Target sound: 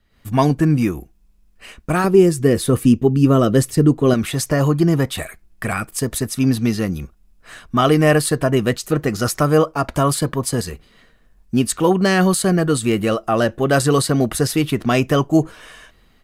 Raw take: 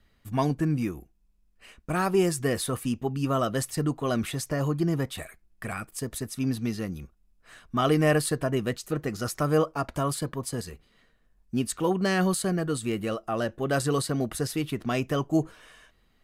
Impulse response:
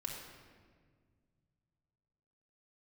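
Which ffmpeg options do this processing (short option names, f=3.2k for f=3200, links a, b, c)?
-filter_complex "[0:a]asettb=1/sr,asplit=3[a][b][c];[a]atrim=end=2.044[d];[b]atrim=start=2.04:end=4.14,asetpts=PTS-STARTPTS,afade=t=in:d=0.004:c=qsin,afade=t=out:st=2.096:d=0.004:c=qsin,lowshelf=f=550:t=q:w=1.5:g=7[e];[c]atrim=start=4.136[f];[d][e]acrossfade=d=0.004:c1=hsin:c2=qsin[g];[g][f]acrossfade=d=0.004:c1=qsin:c2=hsin,dynaudnorm=f=100:g=3:m=12.5dB,volume=-1dB"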